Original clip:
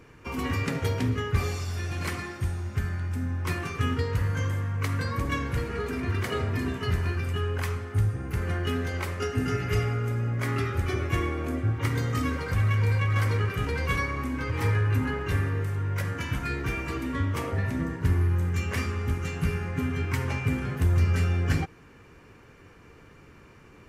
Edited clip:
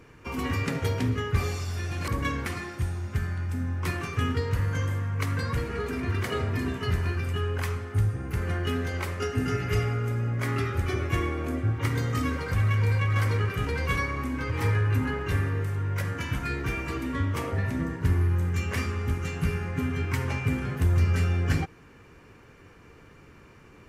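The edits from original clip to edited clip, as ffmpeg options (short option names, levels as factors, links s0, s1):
-filter_complex "[0:a]asplit=4[s0][s1][s2][s3];[s0]atrim=end=2.082[s4];[s1]atrim=start=5.148:end=5.532[s5];[s2]atrim=start=2.078:end=5.152[s6];[s3]atrim=start=5.528[s7];[s4][s5]acrossfade=d=0.004:c1=hsin:c2=hsin[s8];[s8][s6]acrossfade=d=0.004:c1=hsin:c2=hsin[s9];[s9][s7]acrossfade=d=0.004:c1=hsin:c2=hsin"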